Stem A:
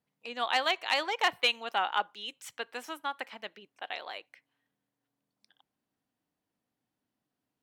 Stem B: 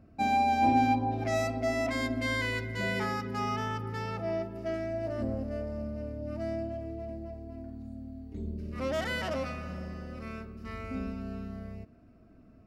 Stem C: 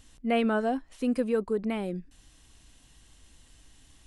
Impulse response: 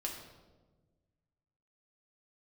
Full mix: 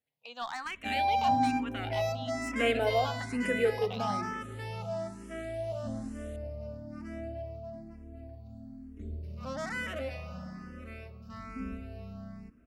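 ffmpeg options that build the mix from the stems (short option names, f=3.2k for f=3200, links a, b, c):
-filter_complex "[0:a]alimiter=limit=-20dB:level=0:latency=1:release=35,aeval=exprs='clip(val(0),-1,0.0376)':c=same,volume=-2dB[a];[1:a]adelay=650,volume=0dB[b];[2:a]highpass=f=290:w=0.5412,highpass=f=290:w=1.3066,adelay=2300,volume=0dB,asplit=2[c][d];[d]volume=-4.5dB[e];[3:a]atrim=start_sample=2205[f];[e][f]afir=irnorm=-1:irlink=0[g];[a][b][c][g]amix=inputs=4:normalize=0,equalizer=f=360:t=o:w=0.58:g=-7.5,asplit=2[h][i];[i]afreqshift=1.1[j];[h][j]amix=inputs=2:normalize=1"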